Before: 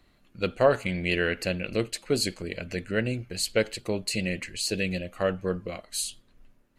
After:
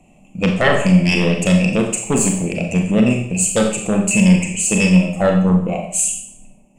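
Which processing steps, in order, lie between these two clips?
EQ curve 110 Hz 0 dB, 170 Hz +15 dB, 400 Hz 0 dB, 780 Hz +12 dB, 1600 Hz -23 dB, 2600 Hz +10 dB, 4100 Hz -24 dB, 7400 Hz +14 dB, 13000 Hz -9 dB; sine folder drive 11 dB, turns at -2 dBFS; on a send: reverb RT60 0.60 s, pre-delay 29 ms, DRR 2 dB; on the sum: gain -8.5 dB

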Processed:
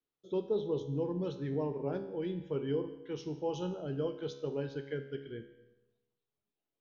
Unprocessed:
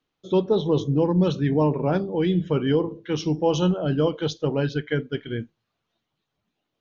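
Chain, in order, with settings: bell 420 Hz +7.5 dB 0.6 oct; resonator 69 Hz, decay 0.81 s, harmonics all, mix 70%; digital reverb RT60 1 s, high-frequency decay 0.55×, pre-delay 0.11 s, DRR 19 dB; gain -9 dB

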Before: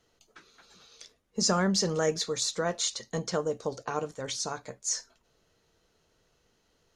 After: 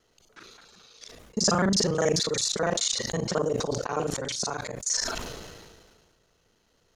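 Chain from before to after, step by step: local time reversal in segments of 36 ms; sustainer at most 33 dB/s; gain +2.5 dB

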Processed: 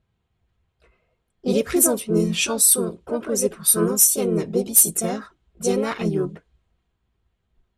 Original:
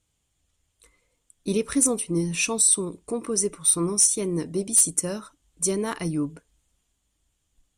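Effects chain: harmoniser +4 st -1 dB, +5 st -12 dB; low-pass opened by the level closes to 2100 Hz, open at -13.5 dBFS; notch comb 290 Hz; gain +3 dB

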